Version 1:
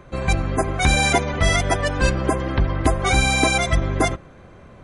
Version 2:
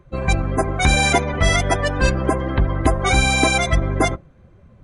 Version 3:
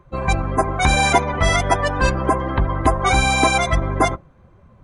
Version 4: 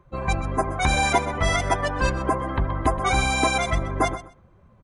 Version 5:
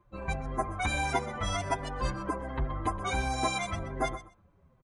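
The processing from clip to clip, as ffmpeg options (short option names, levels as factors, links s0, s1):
-af "afftdn=nr=14:nf=-34,volume=1.19"
-af "equalizer=f=990:w=1.7:g=8,volume=0.841"
-af "aecho=1:1:126|252:0.2|0.0319,volume=0.562"
-filter_complex "[0:a]asplit=2[s0][s1];[s1]adelay=6.3,afreqshift=-1.4[s2];[s0][s2]amix=inputs=2:normalize=1,volume=0.501"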